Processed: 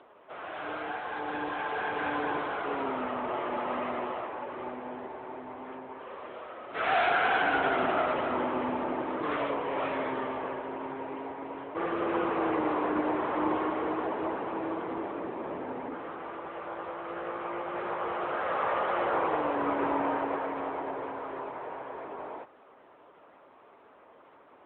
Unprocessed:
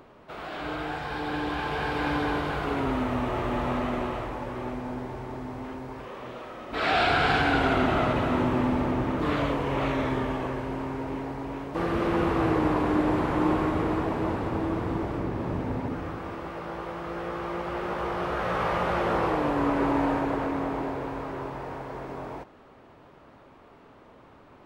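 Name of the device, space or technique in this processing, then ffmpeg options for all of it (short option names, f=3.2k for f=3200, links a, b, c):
telephone: -filter_complex "[0:a]asplit=3[a][b][c];[a]afade=t=out:st=20.35:d=0.02[d];[b]highpass=f=220:p=1,afade=t=in:st=20.35:d=0.02,afade=t=out:st=20.89:d=0.02[e];[c]afade=t=in:st=20.89:d=0.02[f];[d][e][f]amix=inputs=3:normalize=0,highpass=400,lowpass=3.3k" -ar 8000 -c:a libopencore_amrnb -b:a 10200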